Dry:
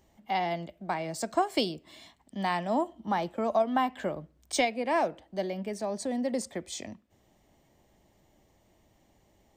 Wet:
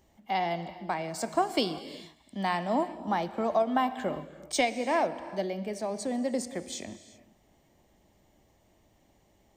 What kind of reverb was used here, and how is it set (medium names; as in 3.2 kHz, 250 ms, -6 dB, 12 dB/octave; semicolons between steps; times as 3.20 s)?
gated-style reverb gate 410 ms flat, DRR 12 dB